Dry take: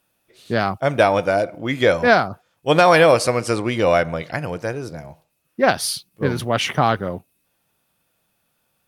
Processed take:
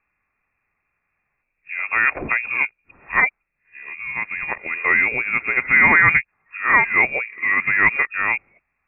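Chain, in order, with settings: reverse the whole clip; frequency inversion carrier 2.6 kHz; trim -1 dB

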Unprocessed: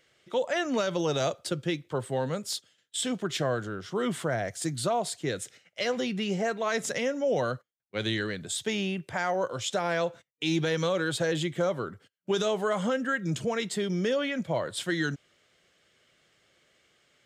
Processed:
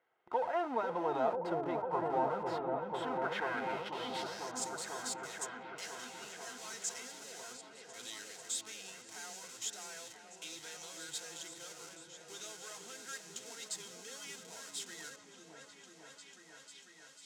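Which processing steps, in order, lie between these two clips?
high-pass 68 Hz 6 dB/octave; treble shelf 3.2 kHz -11.5 dB; in parallel at -3.5 dB: Schmitt trigger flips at -45.5 dBFS; on the sum: comb of notches 580 Hz; band-pass sweep 900 Hz -> 6.9 kHz, 2.93–4.61 s; delay with an opening low-pass 495 ms, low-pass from 400 Hz, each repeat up 1 oct, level 0 dB; trim +2 dB

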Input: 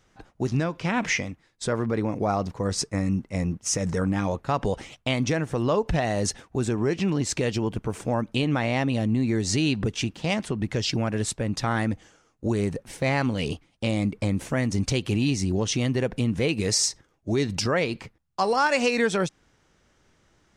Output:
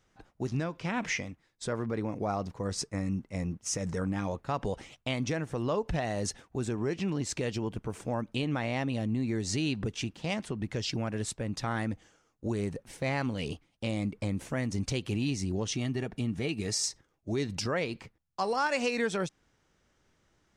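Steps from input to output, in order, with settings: 15.74–16.84 s: comb of notches 510 Hz; trim -7 dB

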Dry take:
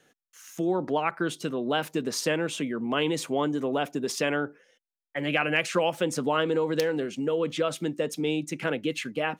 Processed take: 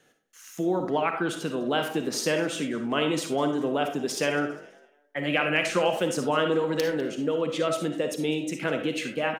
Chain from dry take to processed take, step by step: frequency-shifting echo 202 ms, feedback 33%, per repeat +49 Hz, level -20.5 dB; algorithmic reverb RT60 0.42 s, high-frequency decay 0.55×, pre-delay 15 ms, DRR 5 dB

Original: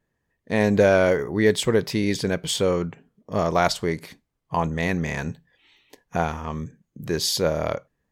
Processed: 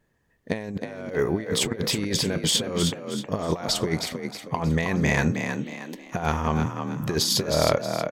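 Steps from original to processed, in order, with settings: compressor with a negative ratio -26 dBFS, ratio -0.5; frequency-shifting echo 316 ms, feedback 37%, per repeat +40 Hz, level -6.5 dB; trim +1.5 dB

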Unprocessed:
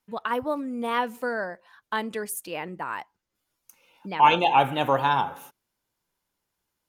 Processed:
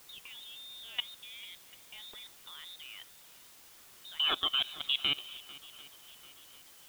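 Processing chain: high-pass 120 Hz 12 dB/octave; in parallel at -1.5 dB: compression 20:1, threshold -28 dBFS, peak gain reduction 17.5 dB; on the sum: frequency inversion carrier 3.9 kHz; level held to a coarse grid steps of 20 dB; on a send: shuffle delay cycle 743 ms, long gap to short 1.5:1, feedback 43%, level -20 dB; on the sum: word length cut 8-bit, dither triangular; trim -8.5 dB

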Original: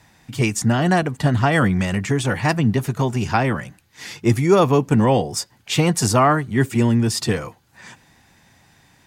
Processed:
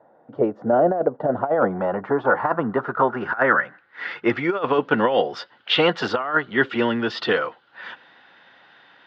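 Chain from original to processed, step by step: cabinet simulation 380–4400 Hz, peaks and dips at 520 Hz +5 dB, 1.4 kHz +9 dB, 2.4 kHz -10 dB; low-pass sweep 610 Hz -> 3 kHz, 1.15–4.81 s; compressor with a negative ratio -17 dBFS, ratio -0.5

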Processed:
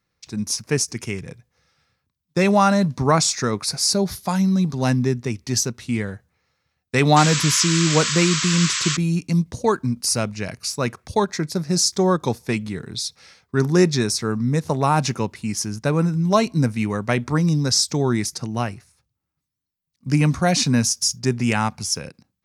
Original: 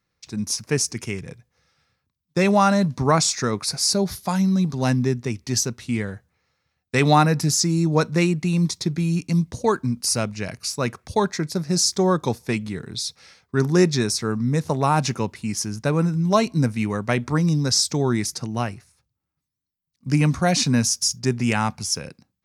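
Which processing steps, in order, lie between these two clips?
painted sound noise, 7.16–8.97 s, 970–8100 Hz -25 dBFS; endings held to a fixed fall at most 580 dB/s; trim +1 dB

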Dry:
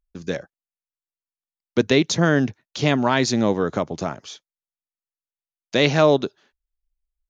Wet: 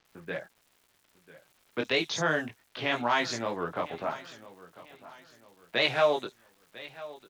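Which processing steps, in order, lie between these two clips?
local Wiener filter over 9 samples; in parallel at +1.5 dB: compression, threshold -28 dBFS, peak gain reduction 16.5 dB; on the sum: three-band isolator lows -13 dB, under 560 Hz, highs -13 dB, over 3.5 kHz; chorus voices 4, 0.32 Hz, delay 21 ms, depth 4.4 ms; treble shelf 3.9 kHz +11.5 dB; level-controlled noise filter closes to 1.7 kHz, open at -19 dBFS; feedback delay 998 ms, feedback 39%, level -18 dB; crackle 460 per s -46 dBFS; bands offset in time lows, highs 50 ms, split 5.7 kHz; warped record 78 rpm, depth 100 cents; trim -4 dB

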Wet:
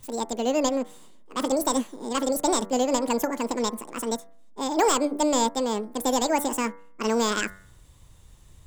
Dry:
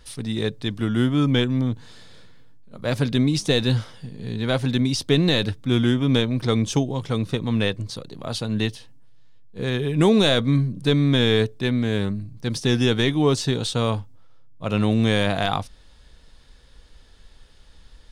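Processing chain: wide varispeed 2.09×; de-hum 96.57 Hz, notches 22; trim -3.5 dB

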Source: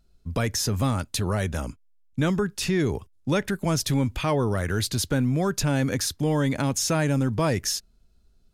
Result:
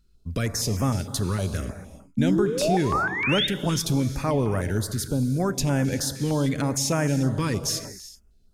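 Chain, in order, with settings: 2.17–3.47 s: painted sound rise 210–3800 Hz -23 dBFS; 4.78–5.40 s: peaking EQ 2 kHz -13 dB 2.3 oct; gated-style reverb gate 420 ms flat, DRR 10 dB; step-sequenced notch 6.5 Hz 680–4000 Hz

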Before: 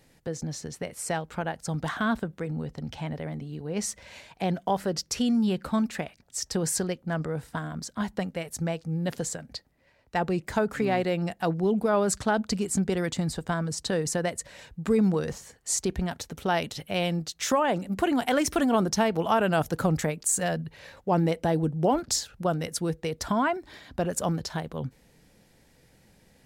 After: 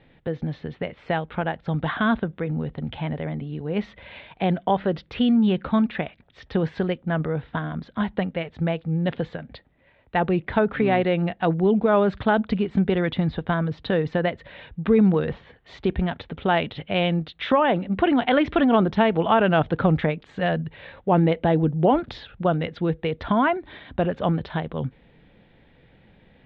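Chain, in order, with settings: Chebyshev low-pass 3.6 kHz, order 5; trim +5.5 dB

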